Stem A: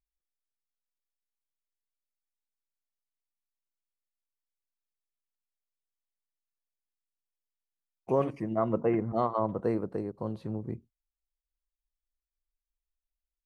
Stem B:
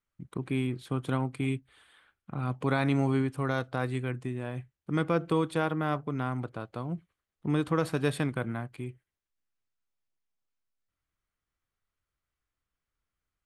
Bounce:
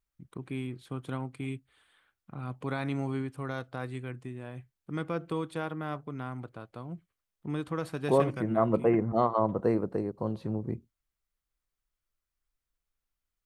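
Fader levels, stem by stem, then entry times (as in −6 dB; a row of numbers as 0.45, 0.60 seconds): +2.5, −6.0 decibels; 0.00, 0.00 seconds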